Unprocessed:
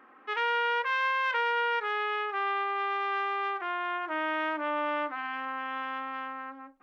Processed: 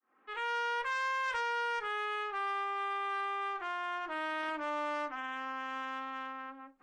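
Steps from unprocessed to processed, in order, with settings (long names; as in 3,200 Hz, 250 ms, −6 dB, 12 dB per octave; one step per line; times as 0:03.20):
fade in at the beginning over 0.55 s
harmonic generator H 5 −19 dB, 7 −30 dB, 8 −28 dB, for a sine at −17 dBFS
level −6.5 dB
AAC 32 kbit/s 22,050 Hz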